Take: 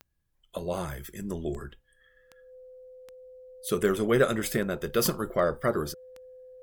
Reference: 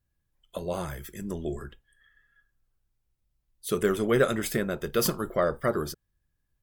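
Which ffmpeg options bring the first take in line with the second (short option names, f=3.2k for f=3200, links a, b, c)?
-af "adeclick=t=4,bandreject=f=510:w=30"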